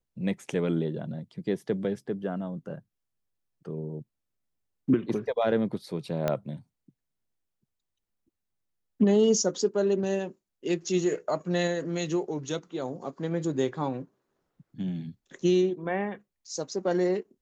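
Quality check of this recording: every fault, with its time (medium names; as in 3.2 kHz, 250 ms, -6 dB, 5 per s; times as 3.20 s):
6.28 s: pop -13 dBFS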